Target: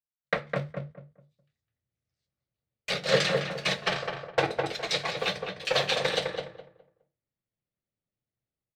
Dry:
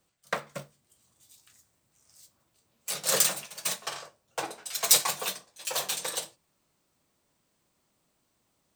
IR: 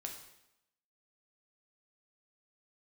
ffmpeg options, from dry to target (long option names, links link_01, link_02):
-filter_complex "[0:a]asplit=2[link_01][link_02];[link_02]aeval=exprs='val(0)*gte(abs(val(0)),0.0251)':channel_layout=same,volume=-12dB[link_03];[link_01][link_03]amix=inputs=2:normalize=0,bandreject=frequency=50:width_type=h:width=6,bandreject=frequency=100:width_type=h:width=6,bandreject=frequency=150:width_type=h:width=6,agate=range=-35dB:threshold=-47dB:ratio=16:detection=peak,bandreject=frequency=990:width=9.1,acrossover=split=7600[link_04][link_05];[link_05]acompressor=threshold=-39dB:ratio=4:attack=1:release=60[link_06];[link_04][link_06]amix=inputs=2:normalize=0,equalizer=frequency=125:width_type=o:width=1:gain=9,equalizer=frequency=500:width_type=o:width=1:gain=8,equalizer=frequency=2000:width_type=o:width=1:gain=9,equalizer=frequency=4000:width_type=o:width=1:gain=8,equalizer=frequency=8000:width_type=o:width=1:gain=-5,dynaudnorm=framelen=160:gausssize=3:maxgain=15.5dB,aemphasis=mode=reproduction:type=bsi,asplit=2[link_07][link_08];[link_08]adelay=207,lowpass=frequency=1500:poles=1,volume=-3dB,asplit=2[link_09][link_10];[link_10]adelay=207,lowpass=frequency=1500:poles=1,volume=0.27,asplit=2[link_11][link_12];[link_12]adelay=207,lowpass=frequency=1500:poles=1,volume=0.27,asplit=2[link_13][link_14];[link_14]adelay=207,lowpass=frequency=1500:poles=1,volume=0.27[link_15];[link_09][link_11][link_13][link_15]amix=inputs=4:normalize=0[link_16];[link_07][link_16]amix=inputs=2:normalize=0,volume=-9dB"